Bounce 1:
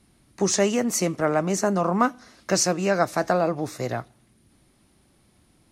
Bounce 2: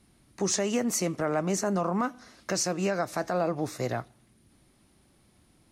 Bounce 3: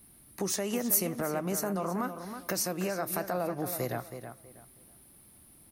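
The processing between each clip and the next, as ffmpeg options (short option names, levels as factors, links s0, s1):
-af "alimiter=limit=0.158:level=0:latency=1:release=125,volume=0.794"
-filter_complex "[0:a]acompressor=threshold=0.0251:ratio=2,aexciter=amount=5.8:drive=9.2:freq=10000,asplit=2[s0][s1];[s1]adelay=322,lowpass=f=4000:p=1,volume=0.355,asplit=2[s2][s3];[s3]adelay=322,lowpass=f=4000:p=1,volume=0.26,asplit=2[s4][s5];[s5]adelay=322,lowpass=f=4000:p=1,volume=0.26[s6];[s2][s4][s6]amix=inputs=3:normalize=0[s7];[s0][s7]amix=inputs=2:normalize=0"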